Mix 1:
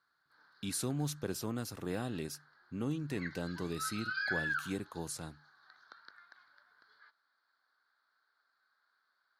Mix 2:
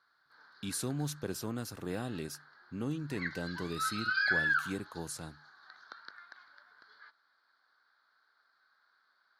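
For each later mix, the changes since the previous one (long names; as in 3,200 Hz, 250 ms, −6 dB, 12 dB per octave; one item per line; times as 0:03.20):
background +6.0 dB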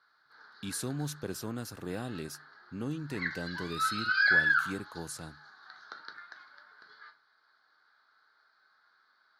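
reverb: on, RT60 0.35 s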